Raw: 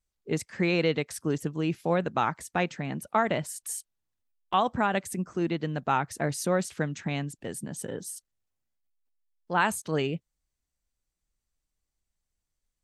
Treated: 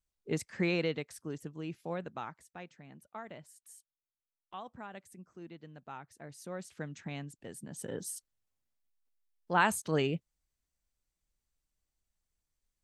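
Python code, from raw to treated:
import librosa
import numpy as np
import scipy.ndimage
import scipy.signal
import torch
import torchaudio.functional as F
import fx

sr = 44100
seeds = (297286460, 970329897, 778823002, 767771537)

y = fx.gain(x, sr, db=fx.line((0.67, -4.5), (1.2, -12.0), (2.04, -12.0), (2.54, -20.0), (6.25, -20.0), (6.93, -10.0), (7.61, -10.0), (8.01, -2.0)))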